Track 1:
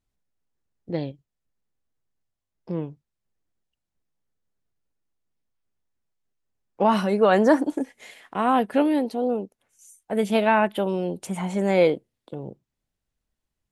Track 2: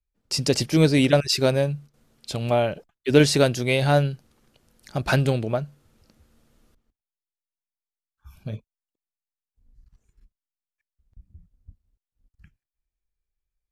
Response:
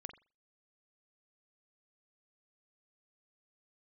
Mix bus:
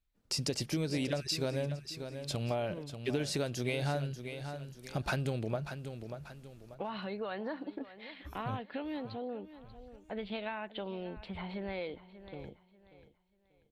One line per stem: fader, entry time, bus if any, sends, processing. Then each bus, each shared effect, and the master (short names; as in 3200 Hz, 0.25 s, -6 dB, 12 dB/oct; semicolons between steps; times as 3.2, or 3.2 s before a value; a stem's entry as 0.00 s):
-10.0 dB, 0.00 s, no send, echo send -17.5 dB, high shelf 2200 Hz +11.5 dB; compressor, threshold -20 dBFS, peak gain reduction 9 dB; elliptic low-pass 4200 Hz
-1.5 dB, 0.00 s, no send, echo send -12.5 dB, compressor 6:1, threshold -22 dBFS, peak gain reduction 12 dB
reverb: off
echo: feedback echo 0.588 s, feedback 28%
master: compressor 1.5:1, threshold -42 dBFS, peak gain reduction 7.5 dB